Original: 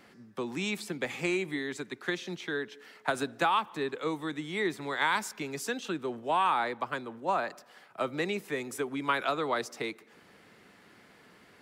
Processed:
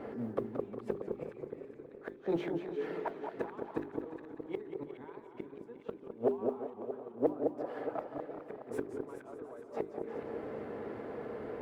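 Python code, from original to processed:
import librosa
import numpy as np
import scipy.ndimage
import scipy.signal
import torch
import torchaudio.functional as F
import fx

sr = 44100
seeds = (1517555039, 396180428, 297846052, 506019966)

y = fx.notch_comb(x, sr, f0_hz=180.0)
y = fx.gate_flip(y, sr, shuts_db=-30.0, range_db=-37)
y = fx.low_shelf(y, sr, hz=260.0, db=7.5)
y = fx.hum_notches(y, sr, base_hz=50, count=8)
y = fx.echo_alternate(y, sr, ms=209, hz=1200.0, feedback_pct=62, wet_db=-7)
y = fx.mod_noise(y, sr, seeds[0], snr_db=20)
y = 10.0 ** (-39.5 / 20.0) * np.tanh(y / 10.0 ** (-39.5 / 20.0))
y = fx.curve_eq(y, sr, hz=(170.0, 480.0, 5900.0), db=(0, 14, -20))
y = fx.echo_warbled(y, sr, ms=179, feedback_pct=65, rate_hz=2.8, cents=201, wet_db=-10.0)
y = y * 10.0 ** (7.5 / 20.0)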